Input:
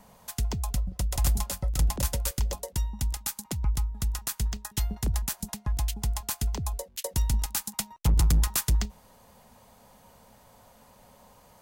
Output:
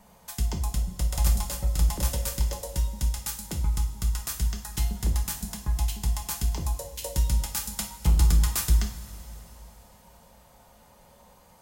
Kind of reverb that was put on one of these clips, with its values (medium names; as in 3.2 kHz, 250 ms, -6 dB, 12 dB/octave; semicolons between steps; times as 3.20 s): two-slope reverb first 0.41 s, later 3.7 s, from -18 dB, DRR 1 dB; trim -2.5 dB